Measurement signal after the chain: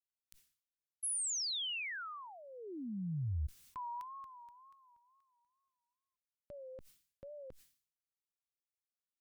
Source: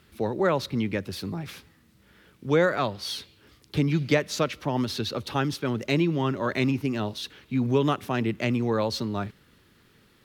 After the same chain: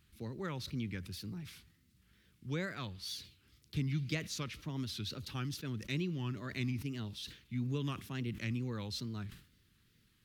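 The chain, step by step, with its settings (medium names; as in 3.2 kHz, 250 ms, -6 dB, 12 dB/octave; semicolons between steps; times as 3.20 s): amplifier tone stack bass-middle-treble 6-0-2; wow and flutter 120 cents; decay stretcher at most 120 dB/s; trim +6 dB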